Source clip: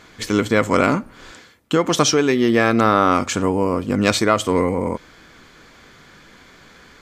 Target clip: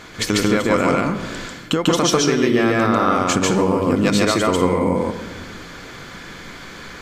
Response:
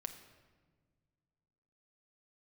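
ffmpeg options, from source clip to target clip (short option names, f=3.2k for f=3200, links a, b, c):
-filter_complex "[0:a]acompressor=threshold=-24dB:ratio=6,asplit=2[a][b];[1:a]atrim=start_sample=2205,adelay=144[c];[b][c]afir=irnorm=-1:irlink=0,volume=3.5dB[d];[a][d]amix=inputs=2:normalize=0,volume=7dB"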